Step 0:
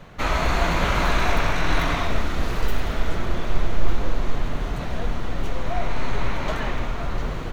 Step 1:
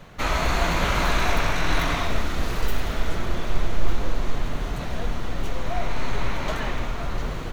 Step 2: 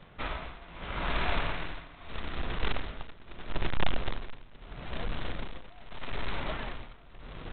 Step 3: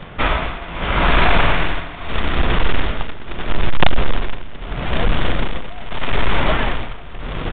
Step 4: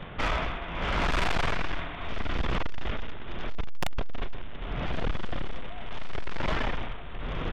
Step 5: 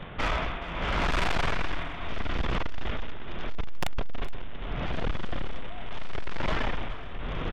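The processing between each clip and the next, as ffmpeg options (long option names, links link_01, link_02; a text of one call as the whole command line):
ffmpeg -i in.wav -af "highshelf=frequency=4300:gain=5.5,volume=-1.5dB" out.wav
ffmpeg -i in.wav -af "tremolo=f=0.78:d=0.9,aresample=8000,acrusher=bits=2:mode=log:mix=0:aa=0.000001,aresample=44100,volume=-8dB" out.wav
ffmpeg -i in.wav -af "aresample=8000,aeval=exprs='0.282*sin(PI/2*2.82*val(0)/0.282)':channel_layout=same,aresample=44100,aecho=1:1:160|320|480|640:0.112|0.055|0.0269|0.0132,volume=5.5dB" out.wav
ffmpeg -i in.wav -af "asoftclip=type=tanh:threshold=-17dB,volume=-5.5dB" out.wav
ffmpeg -i in.wav -af "aecho=1:1:420:0.133" out.wav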